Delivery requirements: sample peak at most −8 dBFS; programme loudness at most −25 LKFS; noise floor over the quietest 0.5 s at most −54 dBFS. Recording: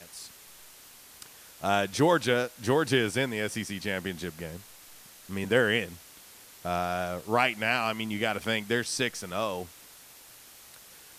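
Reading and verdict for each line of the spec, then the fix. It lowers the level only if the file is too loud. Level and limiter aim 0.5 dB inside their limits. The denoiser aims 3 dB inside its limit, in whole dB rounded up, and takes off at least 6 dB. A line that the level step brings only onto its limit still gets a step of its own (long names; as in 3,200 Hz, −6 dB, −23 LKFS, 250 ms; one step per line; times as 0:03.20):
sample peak −10.0 dBFS: in spec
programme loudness −28.5 LKFS: in spec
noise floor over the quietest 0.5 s −52 dBFS: out of spec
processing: broadband denoise 6 dB, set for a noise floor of −52 dBFS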